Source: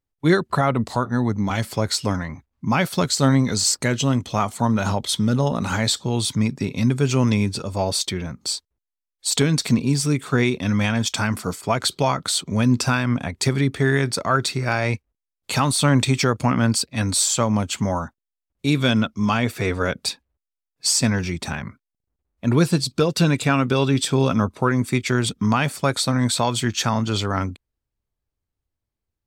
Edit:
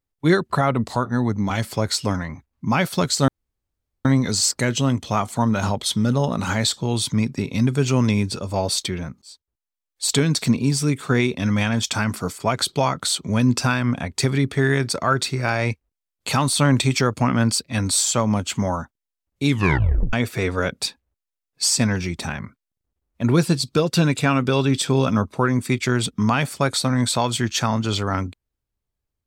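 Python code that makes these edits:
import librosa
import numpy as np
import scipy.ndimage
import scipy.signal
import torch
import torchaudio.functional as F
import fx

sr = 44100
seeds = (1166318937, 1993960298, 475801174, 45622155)

y = fx.edit(x, sr, fx.insert_room_tone(at_s=3.28, length_s=0.77),
    fx.fade_in_span(start_s=8.45, length_s=0.83, curve='qsin'),
    fx.tape_stop(start_s=18.7, length_s=0.66), tone=tone)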